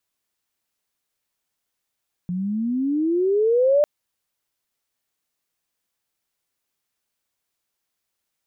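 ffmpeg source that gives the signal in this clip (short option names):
-f lavfi -i "aevalsrc='pow(10,(-13+10*(t/1.55-1))/20)*sin(2*PI*174*1.55/(21.5*log(2)/12)*(exp(21.5*log(2)/12*t/1.55)-1))':d=1.55:s=44100"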